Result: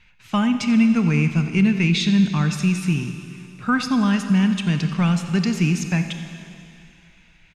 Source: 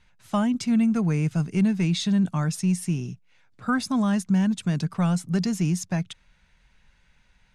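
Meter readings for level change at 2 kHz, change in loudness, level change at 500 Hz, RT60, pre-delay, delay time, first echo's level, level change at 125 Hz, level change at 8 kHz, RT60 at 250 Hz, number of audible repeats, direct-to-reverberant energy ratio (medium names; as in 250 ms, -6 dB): +9.0 dB, +4.5 dB, +2.0 dB, 2.7 s, 22 ms, 88 ms, -16.0 dB, +4.5 dB, +1.0 dB, 2.5 s, 1, 7.0 dB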